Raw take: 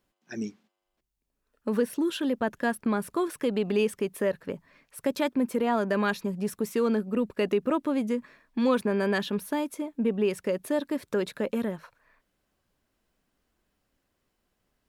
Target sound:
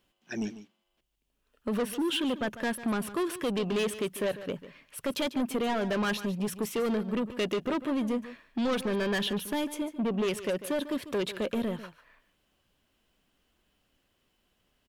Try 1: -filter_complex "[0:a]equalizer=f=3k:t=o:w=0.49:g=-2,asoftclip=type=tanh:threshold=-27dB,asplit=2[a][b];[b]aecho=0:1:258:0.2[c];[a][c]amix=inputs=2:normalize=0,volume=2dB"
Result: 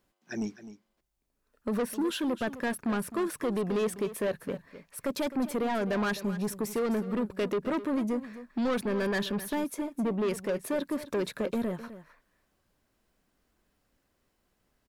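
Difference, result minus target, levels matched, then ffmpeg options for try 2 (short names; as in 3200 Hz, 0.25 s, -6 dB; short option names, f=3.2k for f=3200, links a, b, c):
echo 0.112 s late; 4000 Hz band -5.5 dB
-filter_complex "[0:a]equalizer=f=3k:t=o:w=0.49:g=9.5,asoftclip=type=tanh:threshold=-27dB,asplit=2[a][b];[b]aecho=0:1:146:0.2[c];[a][c]amix=inputs=2:normalize=0,volume=2dB"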